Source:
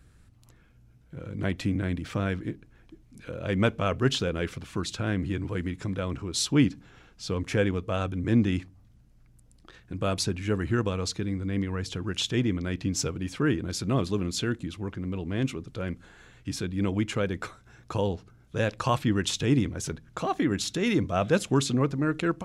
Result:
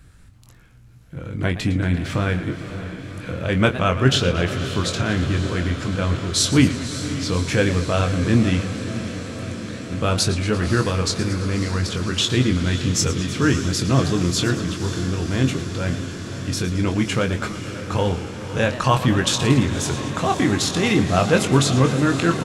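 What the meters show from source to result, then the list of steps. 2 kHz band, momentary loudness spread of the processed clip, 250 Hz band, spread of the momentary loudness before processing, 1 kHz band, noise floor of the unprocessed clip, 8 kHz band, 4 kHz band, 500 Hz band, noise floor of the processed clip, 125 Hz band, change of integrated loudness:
+9.5 dB, 11 LU, +6.5 dB, 11 LU, +9.0 dB, −58 dBFS, +9.5 dB, +9.5 dB, +6.5 dB, −43 dBFS, +9.0 dB, +7.5 dB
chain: parametric band 360 Hz −3.5 dB 1.9 octaves
double-tracking delay 23 ms −7 dB
feedback delay with all-pass diffusion 567 ms, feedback 77%, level −11.5 dB
feedback echo with a swinging delay time 114 ms, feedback 67%, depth 187 cents, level −14 dB
level +8 dB

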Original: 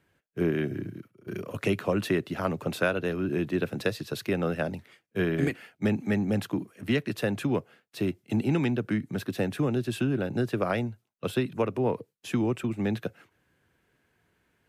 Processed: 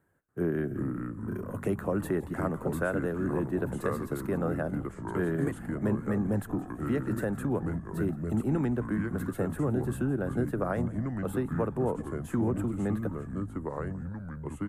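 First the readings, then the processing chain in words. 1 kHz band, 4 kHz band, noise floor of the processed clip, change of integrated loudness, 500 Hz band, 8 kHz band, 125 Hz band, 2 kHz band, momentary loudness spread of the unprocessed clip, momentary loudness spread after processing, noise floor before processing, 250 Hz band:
−1.0 dB, below −15 dB, −43 dBFS, −2.0 dB, −2.5 dB, −3.0 dB, 0.0 dB, −5.5 dB, 9 LU, 6 LU, −74 dBFS, −1.0 dB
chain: delay with pitch and tempo change per echo 287 ms, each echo −4 semitones, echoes 3, each echo −6 dB
in parallel at 0 dB: brickwall limiter −18.5 dBFS, peak gain reduction 7 dB
on the sum: flat-topped bell 3,600 Hz −16 dB
echo with shifted repeats 168 ms, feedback 50%, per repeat −96 Hz, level −19 dB
level −8 dB

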